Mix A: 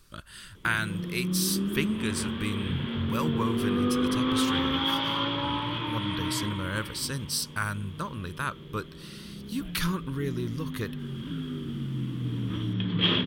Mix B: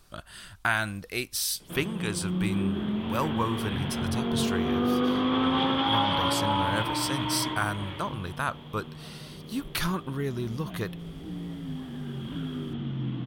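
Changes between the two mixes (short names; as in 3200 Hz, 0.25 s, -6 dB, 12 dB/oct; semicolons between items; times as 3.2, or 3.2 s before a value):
background: entry +1.05 s; master: add bell 730 Hz +14.5 dB 0.5 oct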